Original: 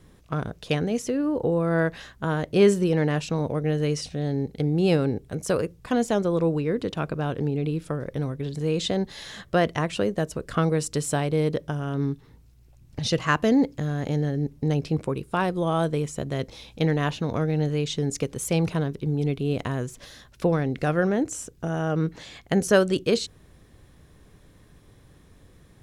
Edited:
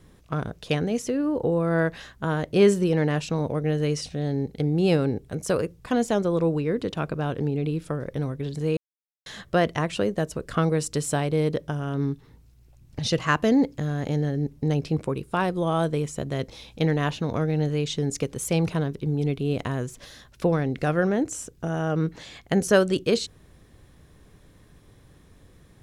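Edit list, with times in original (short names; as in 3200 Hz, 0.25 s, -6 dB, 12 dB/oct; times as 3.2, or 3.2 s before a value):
8.77–9.26 mute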